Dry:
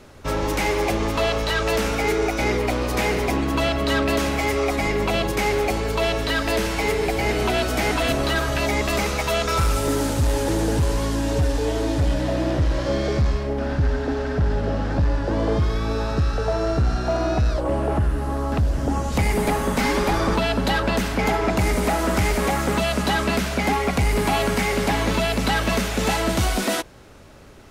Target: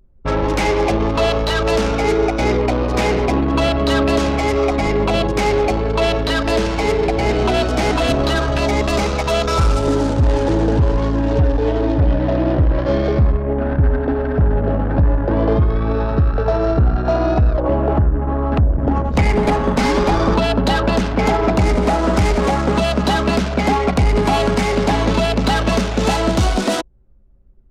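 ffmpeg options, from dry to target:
-af "adynamicsmooth=sensitivity=6.5:basefreq=5.6k,anlmdn=158,adynamicequalizer=threshold=0.0112:dfrequency=2000:dqfactor=1.3:tfrequency=2000:tqfactor=1.3:attack=5:release=100:ratio=0.375:range=3:mode=cutabove:tftype=bell,volume=6dB"

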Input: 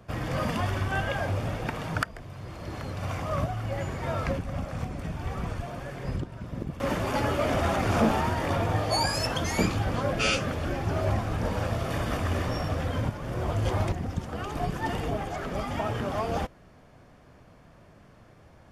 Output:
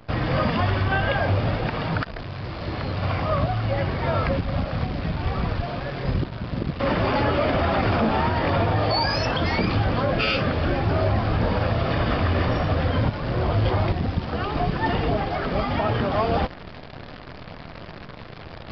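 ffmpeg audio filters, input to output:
-af "alimiter=limit=-20dB:level=0:latency=1:release=56,areverse,acompressor=mode=upward:threshold=-37dB:ratio=2.5,areverse,acrusher=bits=8:dc=4:mix=0:aa=0.000001,aresample=11025,aresample=44100,volume=7.5dB"

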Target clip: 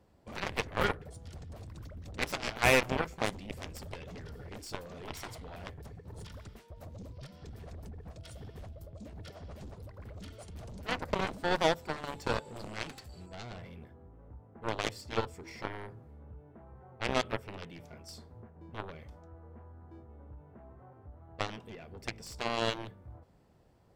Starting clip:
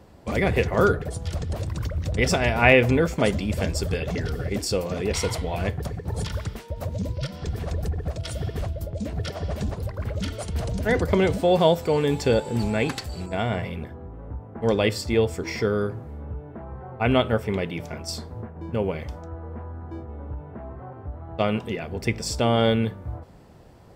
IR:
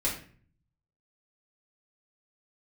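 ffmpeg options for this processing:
-af "aeval=exprs='0.794*(cos(1*acos(clip(val(0)/0.794,-1,1)))-cos(1*PI/2))+0.158*(cos(3*acos(clip(val(0)/0.794,-1,1)))-cos(3*PI/2))+0.0141*(cos(5*acos(clip(val(0)/0.794,-1,1)))-cos(5*PI/2))+0.0112*(cos(6*acos(clip(val(0)/0.794,-1,1)))-cos(6*PI/2))+0.0708*(cos(7*acos(clip(val(0)/0.794,-1,1)))-cos(7*PI/2))':c=same,asoftclip=type=tanh:threshold=-17dB,volume=2.5dB"

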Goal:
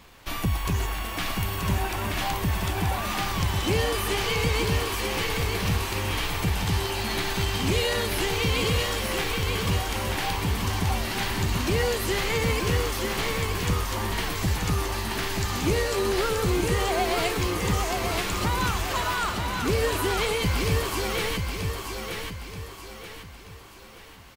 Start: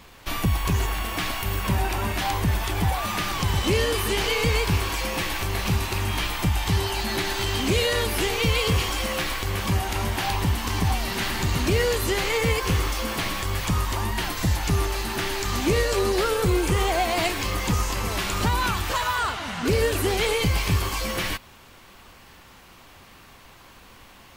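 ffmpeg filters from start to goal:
-af "aecho=1:1:930|1860|2790|3720|4650:0.596|0.238|0.0953|0.0381|0.0152,volume=-3dB"

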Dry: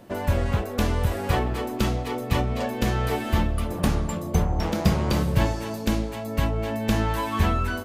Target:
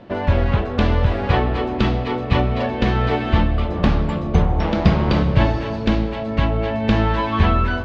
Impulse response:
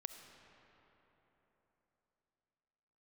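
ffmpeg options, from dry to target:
-filter_complex "[0:a]lowpass=f=4.1k:w=0.5412,lowpass=f=4.1k:w=1.3066,asplit=2[a][b];[1:a]atrim=start_sample=2205[c];[b][c]afir=irnorm=-1:irlink=0,volume=4dB[d];[a][d]amix=inputs=2:normalize=0"

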